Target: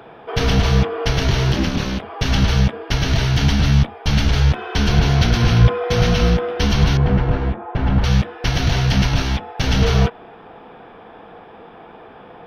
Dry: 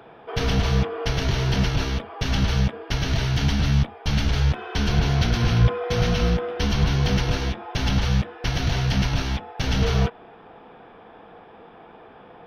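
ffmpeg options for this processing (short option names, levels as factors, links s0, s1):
-filter_complex "[0:a]asplit=3[s0][s1][s2];[s0]afade=t=out:st=1.52:d=0.02[s3];[s1]aeval=exprs='val(0)*sin(2*PI*130*n/s)':c=same,afade=t=in:st=1.52:d=0.02,afade=t=out:st=2.01:d=0.02[s4];[s2]afade=t=in:st=2.01:d=0.02[s5];[s3][s4][s5]amix=inputs=3:normalize=0,asettb=1/sr,asplit=3[s6][s7][s8];[s6]atrim=end=6.974[s9];[s7]atrim=start=6.97:end=8.04,asetpts=PTS-STARTPTS,afade=t=in:d=0.004:c=qsin,afade=t=out:st=1.066:d=0.004:c=qsin,lowpass=1400[s10];[s8]atrim=start=8.036[s11];[s9][s10]acrossfade=d=0.004:c1=hsin:c2=qsin[s12];[s12][s11]acrossfade=d=0.004:c1=qsin:c2=hsin,volume=1.88"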